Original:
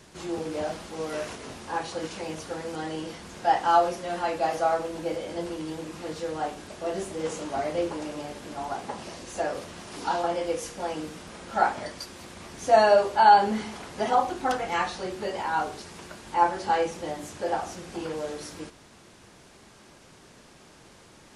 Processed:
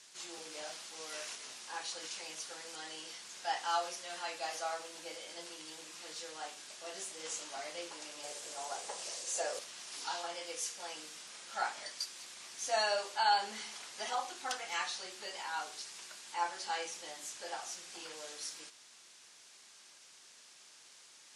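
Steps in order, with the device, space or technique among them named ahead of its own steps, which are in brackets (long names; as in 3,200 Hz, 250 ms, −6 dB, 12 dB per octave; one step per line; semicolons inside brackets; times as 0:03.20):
piezo pickup straight into a mixer (low-pass filter 7,200 Hz 12 dB per octave; first difference)
0:08.23–0:09.59: octave-band graphic EQ 125/250/500/8,000 Hz +5/−5/+12/+7 dB
level +4.5 dB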